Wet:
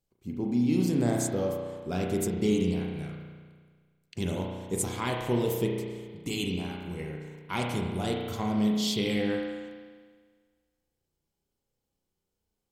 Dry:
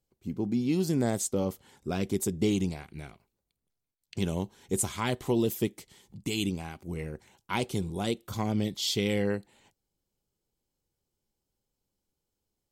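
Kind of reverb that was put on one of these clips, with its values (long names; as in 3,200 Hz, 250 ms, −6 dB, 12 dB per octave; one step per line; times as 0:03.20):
spring reverb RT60 1.6 s, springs 33 ms, chirp 50 ms, DRR −0.5 dB
level −2 dB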